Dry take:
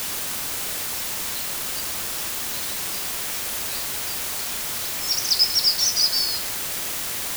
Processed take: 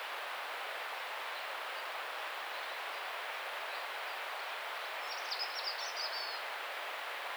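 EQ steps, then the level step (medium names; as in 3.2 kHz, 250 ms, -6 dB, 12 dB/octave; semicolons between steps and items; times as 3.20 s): high-pass 560 Hz 24 dB/octave; distance through air 490 m; 0.0 dB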